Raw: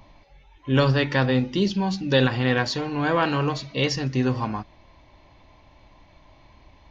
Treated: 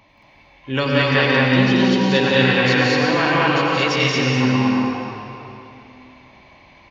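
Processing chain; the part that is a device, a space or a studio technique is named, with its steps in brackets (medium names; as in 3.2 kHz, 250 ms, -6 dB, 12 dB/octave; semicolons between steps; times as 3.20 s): stadium PA (high-pass 150 Hz 6 dB/octave; peaking EQ 2.3 kHz +8 dB 0.8 oct; loudspeakers at several distances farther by 61 m -3 dB, 77 m 0 dB; reverberation RT60 3.0 s, pre-delay 84 ms, DRR -0.5 dB); trim -1.5 dB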